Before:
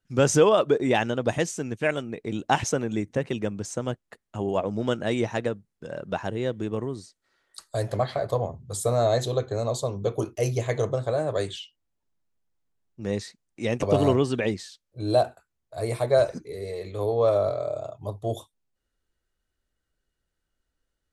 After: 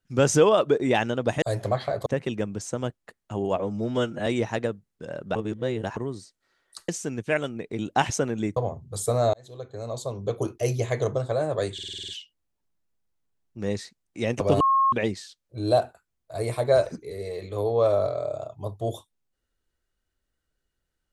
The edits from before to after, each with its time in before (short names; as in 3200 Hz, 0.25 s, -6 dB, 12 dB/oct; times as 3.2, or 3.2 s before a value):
1.42–3.1 swap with 7.7–8.34
4.63–5.08 stretch 1.5×
6.17–6.78 reverse
9.11–10.24 fade in
11.51 stutter 0.05 s, 8 plays
14.03–14.35 bleep 1080 Hz -17 dBFS